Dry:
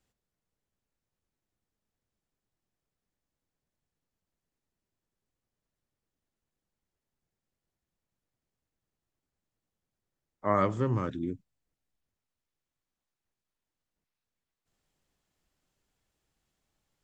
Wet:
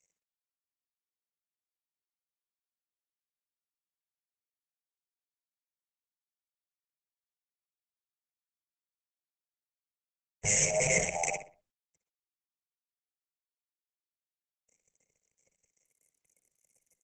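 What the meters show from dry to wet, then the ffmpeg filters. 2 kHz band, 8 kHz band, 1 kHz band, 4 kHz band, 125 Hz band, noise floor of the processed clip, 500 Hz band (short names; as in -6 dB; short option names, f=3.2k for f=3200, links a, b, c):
+11.0 dB, n/a, -6.0 dB, +15.0 dB, -7.5 dB, under -85 dBFS, -1.0 dB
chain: -filter_complex "[0:a]afftfilt=real='real(if(lt(b,1008),b+24*(1-2*mod(floor(b/24),2)),b),0)':imag='imag(if(lt(b,1008),b+24*(1-2*mod(floor(b/24),2)),b),0)':win_size=2048:overlap=0.75,acrossover=split=190|670|1300[a][b][c][d];[a]acompressor=threshold=-43dB:ratio=10[e];[e][b][c][d]amix=inputs=4:normalize=0,asuperstop=centerf=3000:order=8:qfactor=1.8,aeval=exprs='(mod(15.8*val(0)+1,2)-1)/15.8':c=same,acrusher=bits=9:dc=4:mix=0:aa=0.000001,bass=f=250:g=2,treble=f=4k:g=10,acrossover=split=400[f][g];[f]acompressor=threshold=-32dB:ratio=2.5[h];[h][g]amix=inputs=2:normalize=0,asplit=2[i][j];[j]adelay=61,lowpass=f=3.4k:p=1,volume=-11dB,asplit=2[k][l];[l]adelay=61,lowpass=f=3.4k:p=1,volume=0.34,asplit=2[m][n];[n]adelay=61,lowpass=f=3.4k:p=1,volume=0.34,asplit=2[o][p];[p]adelay=61,lowpass=f=3.4k:p=1,volume=0.34[q];[i][k][m][o][q]amix=inputs=5:normalize=0,alimiter=limit=-18dB:level=0:latency=1:release=66,firequalizer=gain_entry='entry(100,0);entry(160,13);entry(290,-22);entry(450,9);entry(950,-12);entry(1400,-28);entry(2100,10);entry(4200,-28);entry(5900,7);entry(11000,5)':delay=0.05:min_phase=1,volume=6dB" -ar 48000 -c:a libopus -b:a 12k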